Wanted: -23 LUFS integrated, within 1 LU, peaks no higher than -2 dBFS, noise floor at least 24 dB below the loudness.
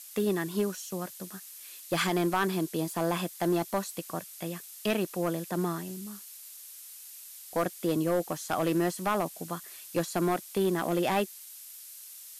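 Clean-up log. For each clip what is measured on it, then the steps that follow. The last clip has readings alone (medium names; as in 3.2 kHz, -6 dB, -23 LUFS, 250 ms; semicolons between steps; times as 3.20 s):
clipped samples 0.7%; clipping level -20.0 dBFS; noise floor -47 dBFS; noise floor target -55 dBFS; loudness -31.0 LUFS; peak level -20.0 dBFS; loudness target -23.0 LUFS
-> clip repair -20 dBFS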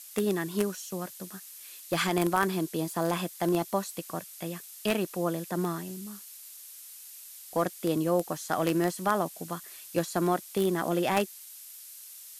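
clipped samples 0.0%; noise floor -47 dBFS; noise floor target -54 dBFS
-> noise print and reduce 7 dB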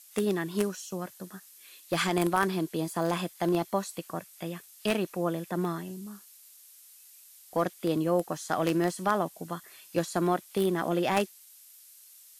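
noise floor -54 dBFS; noise floor target -55 dBFS
-> noise print and reduce 6 dB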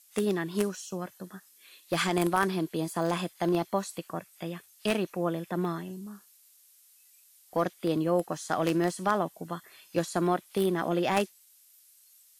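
noise floor -60 dBFS; loudness -30.5 LUFS; peak level -11.0 dBFS; loudness target -23.0 LUFS
-> trim +7.5 dB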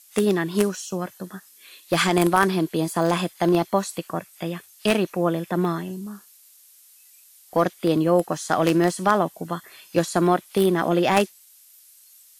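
loudness -23.0 LUFS; peak level -3.5 dBFS; noise floor -53 dBFS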